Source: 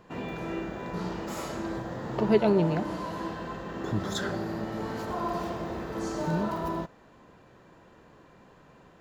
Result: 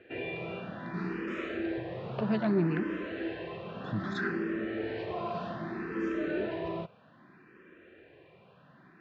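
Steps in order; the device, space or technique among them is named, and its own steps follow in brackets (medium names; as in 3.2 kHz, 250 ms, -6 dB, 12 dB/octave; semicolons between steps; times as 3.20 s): barber-pole phaser into a guitar amplifier (barber-pole phaser +0.63 Hz; saturation -20.5 dBFS, distortion -19 dB; cabinet simulation 100–3900 Hz, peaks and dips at 370 Hz +6 dB, 900 Hz -9 dB, 1.7 kHz +6 dB, 2.5 kHz +8 dB)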